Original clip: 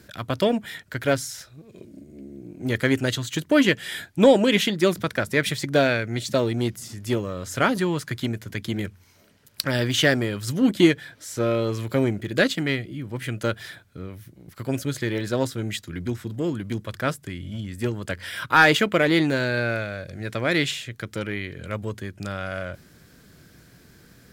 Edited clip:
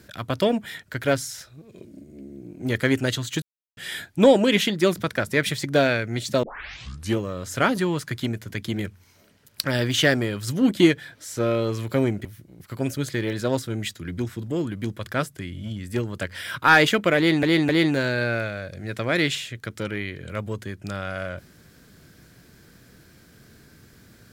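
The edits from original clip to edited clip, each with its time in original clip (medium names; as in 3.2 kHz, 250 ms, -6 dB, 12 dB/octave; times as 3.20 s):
3.42–3.77 s: mute
6.43 s: tape start 0.75 s
12.25–14.13 s: delete
19.05–19.31 s: loop, 3 plays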